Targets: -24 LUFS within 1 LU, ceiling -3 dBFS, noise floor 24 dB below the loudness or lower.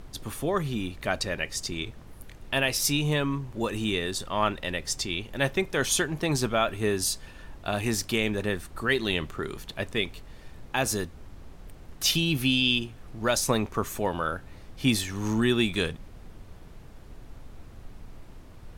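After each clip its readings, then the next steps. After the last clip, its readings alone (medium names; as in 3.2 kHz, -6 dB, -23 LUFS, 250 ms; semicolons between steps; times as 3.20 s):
noise floor -47 dBFS; noise floor target -52 dBFS; loudness -27.5 LUFS; peak level -10.5 dBFS; loudness target -24.0 LUFS
-> noise print and reduce 6 dB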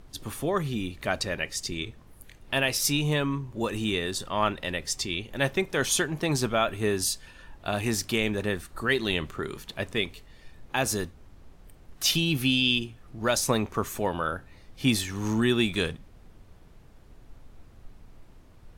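noise floor -53 dBFS; loudness -27.5 LUFS; peak level -10.5 dBFS; loudness target -24.0 LUFS
-> trim +3.5 dB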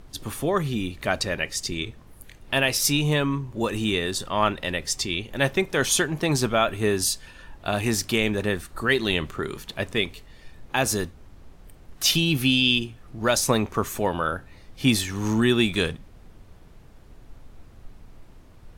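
loudness -24.0 LUFS; peak level -7.0 dBFS; noise floor -49 dBFS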